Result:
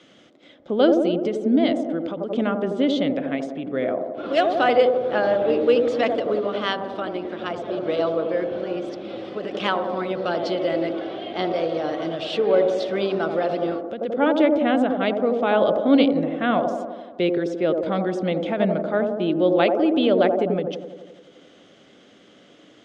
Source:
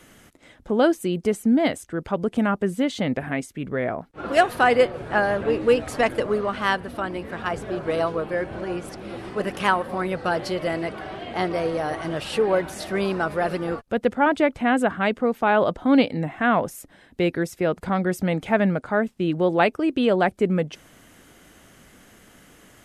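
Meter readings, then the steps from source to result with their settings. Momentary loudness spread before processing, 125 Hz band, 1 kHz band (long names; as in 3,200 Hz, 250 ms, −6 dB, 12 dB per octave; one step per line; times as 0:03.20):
9 LU, −4.0 dB, −1.5 dB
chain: loudspeaker in its box 160–5,800 Hz, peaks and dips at 300 Hz +5 dB, 560 Hz +5 dB, 930 Hz −5 dB, 1,700 Hz −4 dB, 3,400 Hz +9 dB
on a send: delay with a band-pass on its return 86 ms, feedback 66%, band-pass 440 Hz, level −3 dB
on the sum: every ending faded ahead of time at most 110 dB per second
level −2 dB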